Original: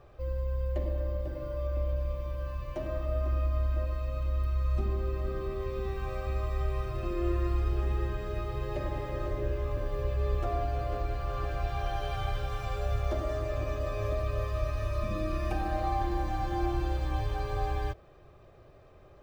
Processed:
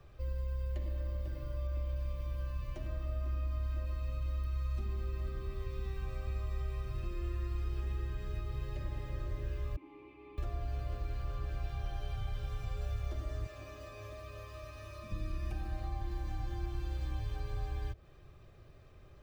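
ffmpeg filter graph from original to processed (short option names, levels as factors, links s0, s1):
-filter_complex "[0:a]asettb=1/sr,asplit=3[s0][s1][s2];[s0]atrim=end=9.764[s3];[s1]atrim=start=9.76:end=10.38,asetpts=PTS-STARTPTS,afade=t=in:d=0.004:c=qsin,afade=t=out:st=0.616:d=0.004:c=qsin,acrossover=split=240 3500:gain=0.141 1 0.251[s4][s5][s6];[s4][s5][s6]amix=inputs=3:normalize=0,acontrast=77,asplit=3[s7][s8][s9];[s7]bandpass=f=300:t=q:w=8,volume=1[s10];[s8]bandpass=f=870:t=q:w=8,volume=0.501[s11];[s9]bandpass=f=2240:t=q:w=8,volume=0.355[s12];[s10][s11][s12]amix=inputs=3:normalize=0[s13];[s2]atrim=start=10.376[s14];[s3][s13]acrossfade=d=0.004:c1=hsin:c2=qsin[s15];[s15][s14]acrossfade=d=0.004:c1=qsin:c2=hsin,asettb=1/sr,asplit=3[s16][s17][s18];[s16]atrim=end=13.464[s19];[s17]atrim=start=13.46:end=15.12,asetpts=PTS-STARTPTS,afade=t=in:d=0.004:c=qsin,afade=t=out:st=1.656:d=0.004:c=qsin,highpass=f=620:p=1,asplit=2[s20][s21];[s21]adelay=18,volume=0.224[s22];[s20][s22]amix=inputs=2:normalize=0,atrim=end_sample=73206[s23];[s18]atrim=start=15.116[s24];[s19][s23]acrossfade=d=0.004:c1=hsin:c2=qsin[s25];[s25][s24]acrossfade=d=0.004:c1=qsin:c2=hsin,equalizer=f=650:t=o:w=2.3:g=-10.5,acrossover=split=130|790[s26][s27][s28];[s26]acompressor=threshold=0.0158:ratio=4[s29];[s27]acompressor=threshold=0.00316:ratio=4[s30];[s28]acompressor=threshold=0.00158:ratio=4[s31];[s29][s30][s31]amix=inputs=3:normalize=0,volume=1.19"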